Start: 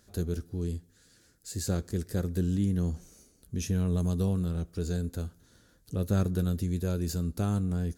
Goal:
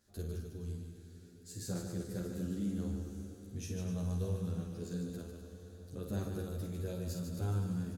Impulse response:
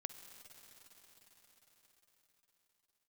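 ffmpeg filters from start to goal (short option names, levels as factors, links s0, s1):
-filter_complex "[0:a]aecho=1:1:49.56|148.7|250.7:0.501|0.501|0.282[s0];[1:a]atrim=start_sample=2205[s1];[s0][s1]afir=irnorm=-1:irlink=0,asplit=2[s2][s3];[s3]adelay=11,afreqshift=0.32[s4];[s2][s4]amix=inputs=2:normalize=1,volume=0.668"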